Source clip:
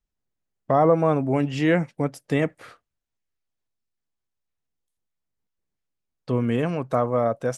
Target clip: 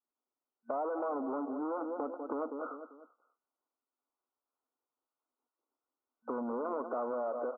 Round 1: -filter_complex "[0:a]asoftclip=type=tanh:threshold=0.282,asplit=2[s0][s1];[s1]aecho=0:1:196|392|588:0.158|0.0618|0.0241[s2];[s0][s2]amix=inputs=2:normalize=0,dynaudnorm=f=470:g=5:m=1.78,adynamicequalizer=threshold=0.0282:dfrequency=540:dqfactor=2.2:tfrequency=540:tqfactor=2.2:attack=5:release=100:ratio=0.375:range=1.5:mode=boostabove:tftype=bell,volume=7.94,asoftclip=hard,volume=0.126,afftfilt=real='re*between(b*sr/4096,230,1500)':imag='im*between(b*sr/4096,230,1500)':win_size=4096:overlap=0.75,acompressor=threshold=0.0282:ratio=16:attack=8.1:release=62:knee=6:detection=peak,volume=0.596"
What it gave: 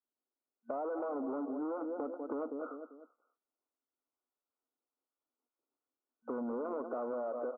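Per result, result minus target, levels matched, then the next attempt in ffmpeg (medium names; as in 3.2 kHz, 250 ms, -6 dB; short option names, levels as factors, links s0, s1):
saturation: distortion -8 dB; 1 kHz band -3.0 dB
-filter_complex "[0:a]asoftclip=type=tanh:threshold=0.133,asplit=2[s0][s1];[s1]aecho=0:1:196|392|588:0.158|0.0618|0.0241[s2];[s0][s2]amix=inputs=2:normalize=0,dynaudnorm=f=470:g=5:m=1.78,adynamicequalizer=threshold=0.0282:dfrequency=540:dqfactor=2.2:tfrequency=540:tqfactor=2.2:attack=5:release=100:ratio=0.375:range=1.5:mode=boostabove:tftype=bell,volume=7.94,asoftclip=hard,volume=0.126,afftfilt=real='re*between(b*sr/4096,230,1500)':imag='im*between(b*sr/4096,230,1500)':win_size=4096:overlap=0.75,acompressor=threshold=0.0282:ratio=16:attack=8.1:release=62:knee=6:detection=peak,volume=0.596"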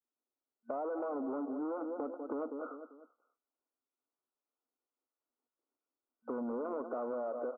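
1 kHz band -3.0 dB
-filter_complex "[0:a]asoftclip=type=tanh:threshold=0.133,asplit=2[s0][s1];[s1]aecho=0:1:196|392|588:0.158|0.0618|0.0241[s2];[s0][s2]amix=inputs=2:normalize=0,dynaudnorm=f=470:g=5:m=1.78,adynamicequalizer=threshold=0.0282:dfrequency=540:dqfactor=2.2:tfrequency=540:tqfactor=2.2:attack=5:release=100:ratio=0.375:range=1.5:mode=boostabove:tftype=bell,volume=7.94,asoftclip=hard,volume=0.126,afftfilt=real='re*between(b*sr/4096,230,1500)':imag='im*between(b*sr/4096,230,1500)':win_size=4096:overlap=0.75,acompressor=threshold=0.0282:ratio=16:attack=8.1:release=62:knee=6:detection=peak,equalizer=f=1000:w=1.3:g=6.5,volume=0.596"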